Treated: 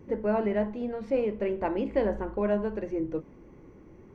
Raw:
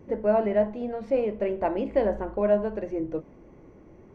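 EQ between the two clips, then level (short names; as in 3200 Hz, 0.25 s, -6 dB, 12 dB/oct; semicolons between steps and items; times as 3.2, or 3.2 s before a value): bell 650 Hz -7.5 dB 0.47 oct; 0.0 dB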